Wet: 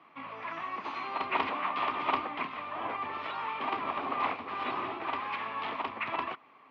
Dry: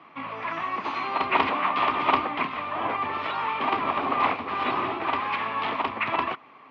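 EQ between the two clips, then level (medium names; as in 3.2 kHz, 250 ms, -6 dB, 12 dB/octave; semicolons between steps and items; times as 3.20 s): bass shelf 180 Hz -4 dB; -7.5 dB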